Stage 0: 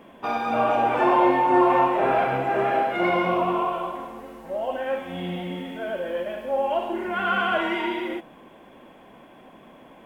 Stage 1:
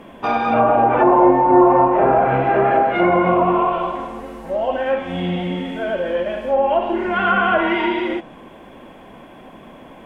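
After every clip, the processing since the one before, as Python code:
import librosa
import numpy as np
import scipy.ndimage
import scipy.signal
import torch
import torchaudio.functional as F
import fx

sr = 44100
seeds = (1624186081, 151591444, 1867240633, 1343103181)

y = fx.low_shelf(x, sr, hz=100.0, db=8.0)
y = fx.env_lowpass_down(y, sr, base_hz=1000.0, full_db=-16.0)
y = y * librosa.db_to_amplitude(7.0)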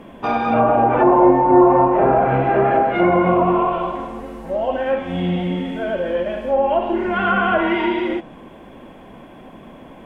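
y = fx.low_shelf(x, sr, hz=400.0, db=5.0)
y = y * librosa.db_to_amplitude(-2.0)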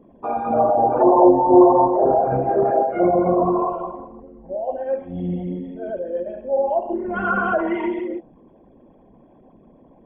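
y = fx.envelope_sharpen(x, sr, power=2.0)
y = fx.upward_expand(y, sr, threshold_db=-31.0, expansion=1.5)
y = y * librosa.db_to_amplitude(1.0)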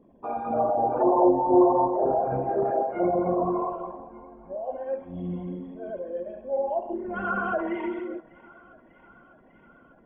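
y = fx.echo_thinned(x, sr, ms=597, feedback_pct=83, hz=750.0, wet_db=-20)
y = y * librosa.db_to_amplitude(-7.0)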